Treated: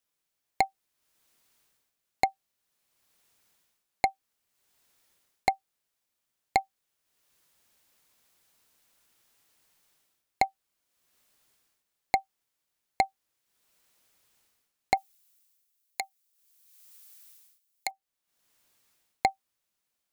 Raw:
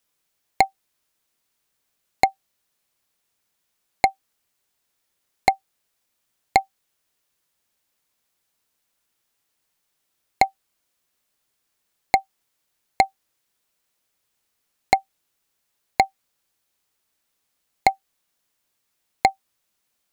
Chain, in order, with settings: 14.97–17.91 tilt +4.5 dB/oct; AGC gain up to 14 dB; gain -8 dB

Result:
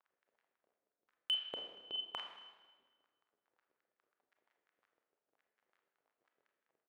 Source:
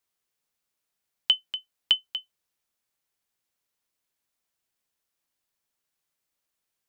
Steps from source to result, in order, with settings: Wiener smoothing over 41 samples; bell 2000 Hz -12.5 dB 0.39 oct; transient shaper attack -12 dB, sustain +11 dB; crackle 23/s -57 dBFS; doubler 48 ms -12 dB; wah 5.6 Hz 400–1800 Hz, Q 2.3; Schroeder reverb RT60 1.3 s, combs from 26 ms, DRR 4 dB; hard clip -36.5 dBFS, distortion -20 dB; high shelf 4300 Hz -8.5 dB; gain +10.5 dB

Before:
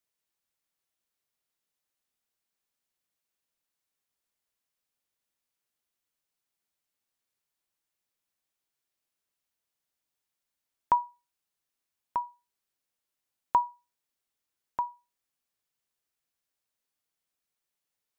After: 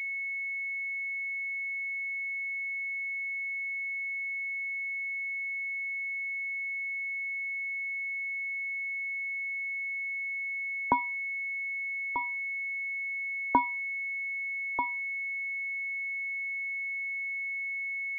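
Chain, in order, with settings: 10.92–12.21 bell 660 Hz -9 dB 0.63 oct; pulse-width modulation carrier 2200 Hz; gain +3 dB

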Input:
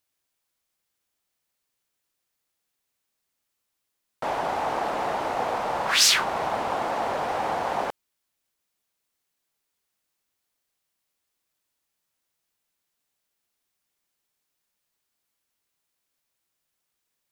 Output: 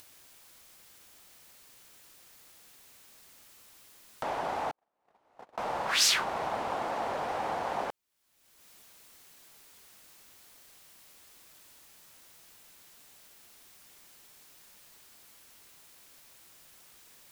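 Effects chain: 4.71–5.58 gate -20 dBFS, range -56 dB; upward compressor, threshold -27 dBFS; gain -6 dB

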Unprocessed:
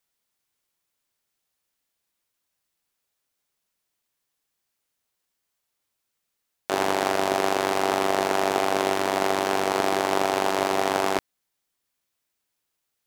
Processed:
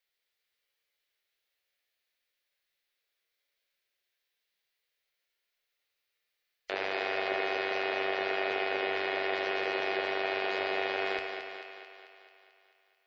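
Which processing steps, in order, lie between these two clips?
spectral gate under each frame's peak -25 dB strong; graphic EQ 125/250/500/1000/2000/4000/8000 Hz -9/-8/+7/-6/+10/+7/-8 dB; limiter -10 dBFS, peak gain reduction 6.5 dB; resonator 93 Hz, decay 1.7 s, harmonics all, mix 80%; thinning echo 0.22 s, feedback 61%, high-pass 210 Hz, level -6.5 dB; gain +5 dB

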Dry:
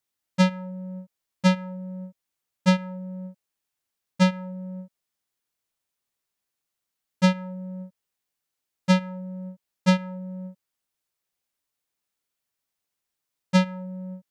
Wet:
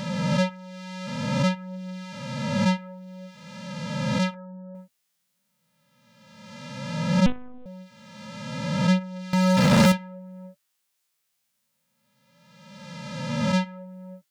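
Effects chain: spectral swells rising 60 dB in 1.66 s; 4.34–4.75 elliptic low-pass 1600 Hz; 9.33–9.92 sample leveller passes 5; flange 0.55 Hz, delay 5 ms, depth 4.9 ms, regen +49%; 7.26–7.66 monotone LPC vocoder at 8 kHz 250 Hz; mismatched tape noise reduction encoder only

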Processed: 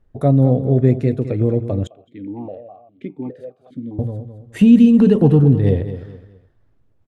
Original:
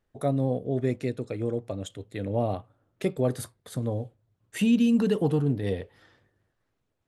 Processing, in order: tilt -3 dB/oct; feedback echo 0.211 s, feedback 31%, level -12 dB; 1.87–3.99 vowel sequencer 4.9 Hz; gain +6 dB

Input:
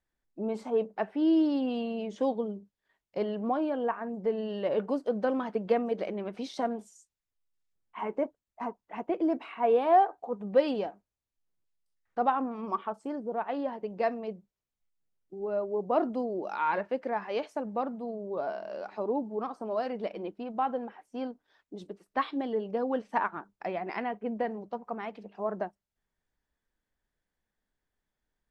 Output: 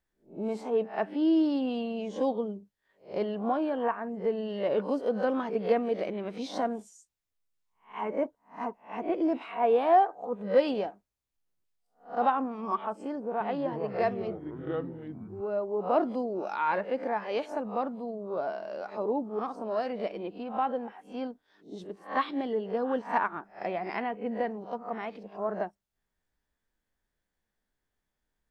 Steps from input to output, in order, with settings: spectral swells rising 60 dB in 0.30 s; 13.09–15.41 echoes that change speed 0.314 s, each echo -6 st, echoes 3, each echo -6 dB

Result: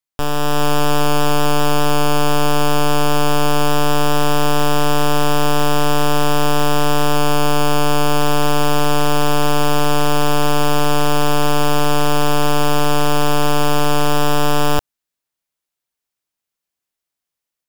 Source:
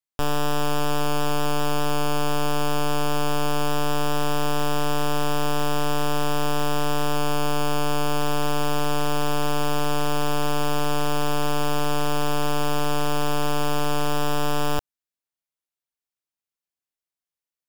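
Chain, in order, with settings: AGC gain up to 4.5 dB; gain +3.5 dB

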